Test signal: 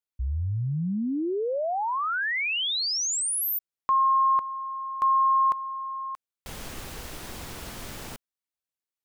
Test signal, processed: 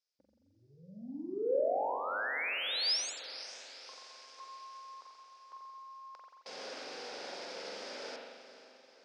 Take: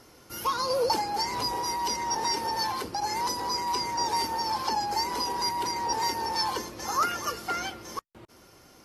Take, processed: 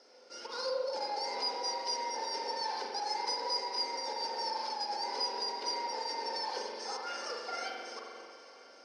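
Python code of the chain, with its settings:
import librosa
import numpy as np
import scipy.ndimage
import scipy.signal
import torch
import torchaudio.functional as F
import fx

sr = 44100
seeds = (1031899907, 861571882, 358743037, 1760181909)

p1 = fx.over_compress(x, sr, threshold_db=-29.0, ratio=-0.5)
p2 = fx.dmg_noise_colour(p1, sr, seeds[0], colour='violet', level_db=-71.0)
p3 = np.clip(p2, -10.0 ** (-23.5 / 20.0), 10.0 ** (-23.5 / 20.0))
p4 = p3 + fx.echo_diffused(p3, sr, ms=500, feedback_pct=54, wet_db=-14, dry=0)
p5 = fx.rev_spring(p4, sr, rt60_s=1.5, pass_ms=(43,), chirp_ms=70, drr_db=-1.0)
p6 = np.repeat(scipy.signal.resample_poly(p5, 1, 3), 3)[:len(p5)]
p7 = fx.cabinet(p6, sr, low_hz=310.0, low_slope=24, high_hz=6400.0, hz=(340.0, 530.0, 1100.0, 1900.0, 3000.0, 5000.0), db=(-8, 7, -9, -3, -4, 10))
y = p7 * 10.0 ** (-8.0 / 20.0)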